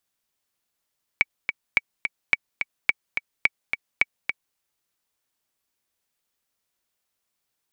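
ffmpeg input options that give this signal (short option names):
-f lavfi -i "aevalsrc='pow(10,(-4-7*gte(mod(t,2*60/214),60/214))/20)*sin(2*PI*2270*mod(t,60/214))*exp(-6.91*mod(t,60/214)/0.03)':d=3.36:s=44100"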